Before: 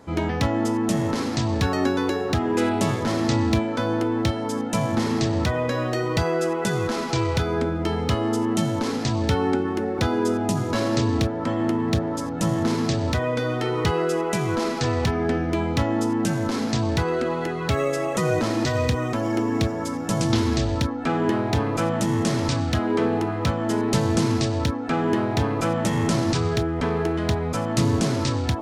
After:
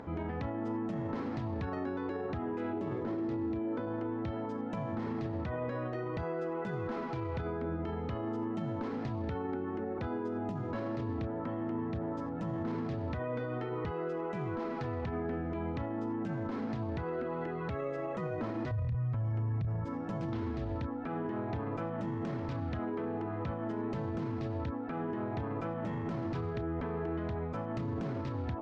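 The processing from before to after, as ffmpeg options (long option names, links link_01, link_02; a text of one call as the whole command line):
ffmpeg -i in.wav -filter_complex "[0:a]asettb=1/sr,asplit=3[link_01][link_02][link_03];[link_01]atrim=end=2.734[link_04];[link_02]atrim=start=2.73:end=3.87,asetpts=PTS-STARTPTS,afade=type=in:duration=0.004:curve=qsin,afade=type=out:start_time=1.136:duration=0.004:curve=qsin,equalizer=frequency=360:width_type=o:width=0.77:gain=11.5[link_05];[link_03]atrim=start=3.866[link_06];[link_04][link_05]acrossfade=duration=0.004:curve1=hsin:curve2=qsin[link_07];[link_07][link_06]acrossfade=duration=0.004:curve1=qsin:curve2=hsin,asettb=1/sr,asplit=3[link_08][link_09][link_10];[link_08]atrim=end=18.714[link_11];[link_09]atrim=start=18.71:end=19.85,asetpts=PTS-STARTPTS,afade=type=in:duration=0.004:curve=qsin,afade=type=out:start_time=1.136:duration=0.004:curve=qsin,lowshelf=frequency=190:width_type=q:width=3:gain=13.5[link_12];[link_10]atrim=start=19.846[link_13];[link_11][link_12]acrossfade=duration=0.004:curve1=hsin:curve2=qsin[link_14];[link_14][link_13]acrossfade=duration=0.004:curve1=qsin:curve2=hsin,lowpass=1800,alimiter=limit=-19.5dB:level=0:latency=1:release=43,acompressor=mode=upward:threshold=-29dB:ratio=2.5,volume=-9dB" out.wav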